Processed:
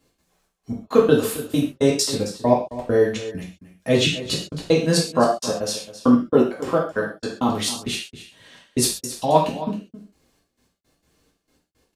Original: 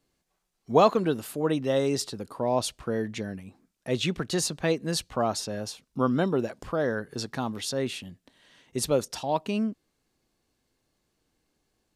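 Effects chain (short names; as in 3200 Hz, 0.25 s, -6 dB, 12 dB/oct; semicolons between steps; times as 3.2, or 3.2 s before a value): 5.13–7.49 HPF 160 Hz 12 dB/oct; step gate "x.xxx..x.." 166 bpm -60 dB; echo 0.268 s -14.5 dB; non-linear reverb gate 0.16 s falling, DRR -4 dB; gain +6 dB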